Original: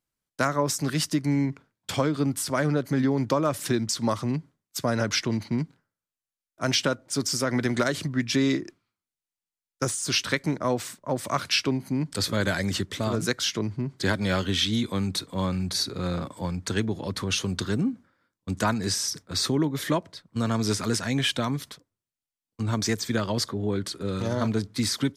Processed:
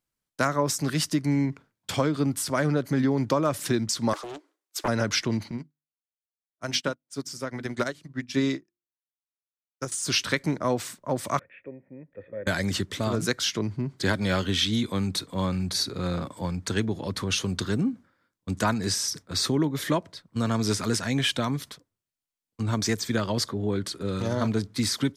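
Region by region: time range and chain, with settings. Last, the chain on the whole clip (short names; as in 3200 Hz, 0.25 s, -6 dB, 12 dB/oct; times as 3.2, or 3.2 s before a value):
4.13–4.88 steep high-pass 300 Hz 96 dB/oct + Doppler distortion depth 0.63 ms
5.51–9.92 notches 50/100/150/200/250/300/350 Hz + upward expander 2.5:1, over -46 dBFS
11.39–12.47 vocal tract filter e + air absorption 440 m
whole clip: dry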